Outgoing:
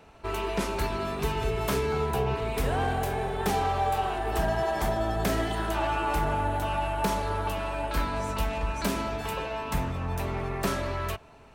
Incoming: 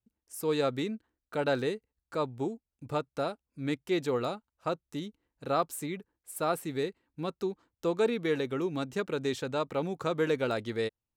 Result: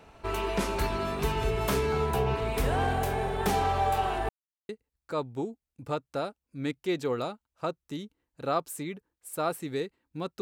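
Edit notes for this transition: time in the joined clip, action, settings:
outgoing
4.29–4.69 s: mute
4.69 s: go over to incoming from 1.72 s

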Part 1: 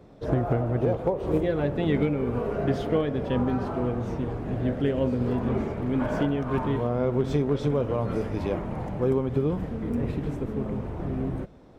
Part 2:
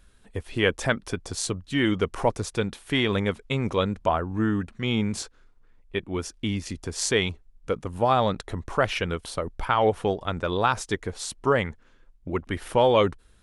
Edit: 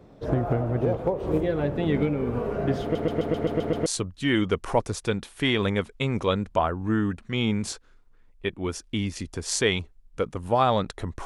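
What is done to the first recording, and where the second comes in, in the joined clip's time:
part 1
2.82 s: stutter in place 0.13 s, 8 plays
3.86 s: go over to part 2 from 1.36 s

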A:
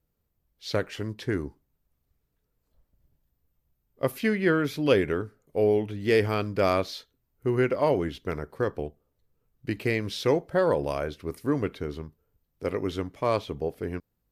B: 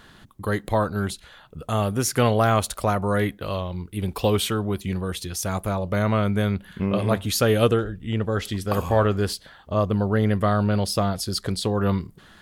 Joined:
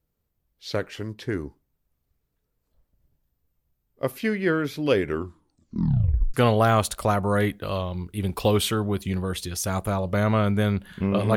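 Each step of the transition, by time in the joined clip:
A
5.05 s: tape stop 1.29 s
6.34 s: go over to B from 2.13 s

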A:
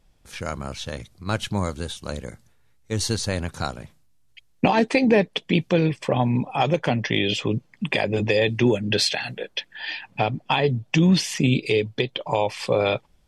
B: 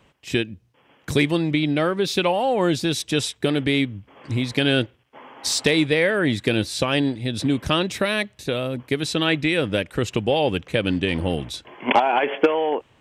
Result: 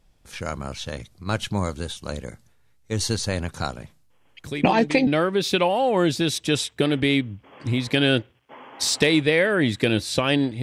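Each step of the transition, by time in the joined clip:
A
4.09 s: add B from 0.73 s 0.98 s -11 dB
5.07 s: go over to B from 1.71 s

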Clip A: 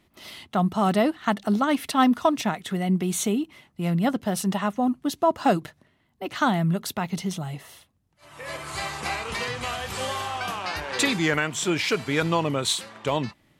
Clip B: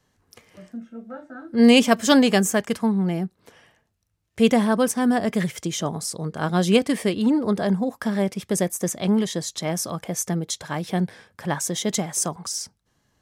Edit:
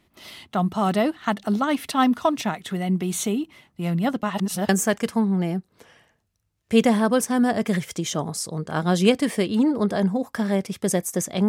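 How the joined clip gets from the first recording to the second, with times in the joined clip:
clip A
4.23–4.69 s: reverse
4.69 s: go over to clip B from 2.36 s

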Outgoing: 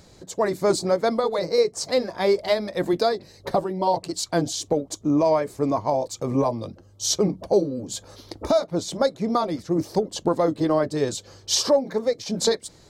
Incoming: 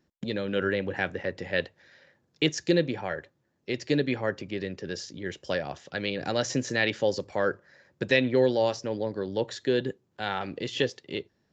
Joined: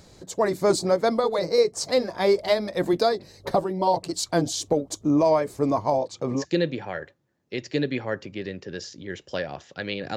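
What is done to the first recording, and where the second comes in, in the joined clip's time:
outgoing
5.98–6.45 s: band-pass 120–4500 Hz
6.39 s: go over to incoming from 2.55 s, crossfade 0.12 s

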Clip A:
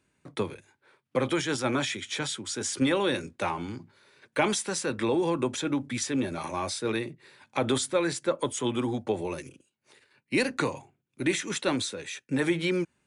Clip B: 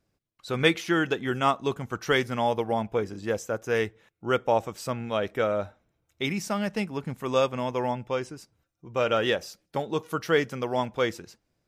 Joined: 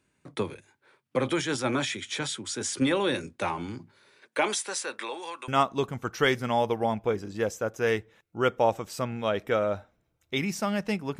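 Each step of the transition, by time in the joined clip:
clip A
4.16–5.48 s: high-pass 240 Hz -> 1.4 kHz
5.48 s: go over to clip B from 1.36 s

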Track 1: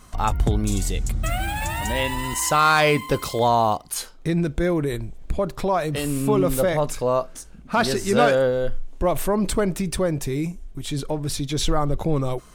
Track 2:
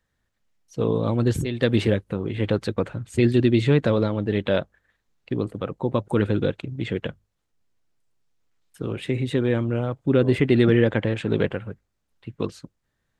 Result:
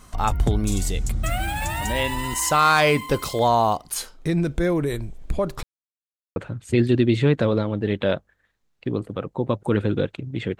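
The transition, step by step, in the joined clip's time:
track 1
5.63–6.36 s: mute
6.36 s: go over to track 2 from 2.81 s

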